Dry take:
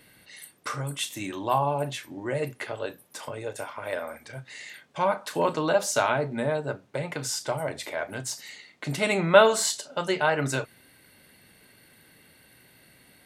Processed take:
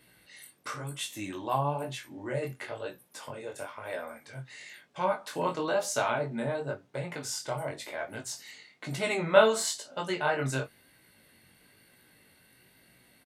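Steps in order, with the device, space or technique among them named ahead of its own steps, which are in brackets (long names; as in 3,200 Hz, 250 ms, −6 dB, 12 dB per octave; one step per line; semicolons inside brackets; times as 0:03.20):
double-tracked vocal (double-tracking delay 22 ms −12 dB; chorus effect 1 Hz, delay 16 ms, depth 7 ms)
level −2 dB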